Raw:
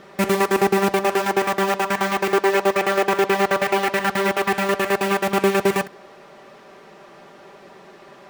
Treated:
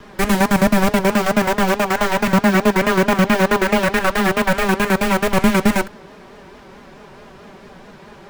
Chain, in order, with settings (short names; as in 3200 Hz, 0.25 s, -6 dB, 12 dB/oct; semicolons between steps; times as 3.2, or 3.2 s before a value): vibrato 4.6 Hz 71 cents; frequency shift -190 Hz; gain +4 dB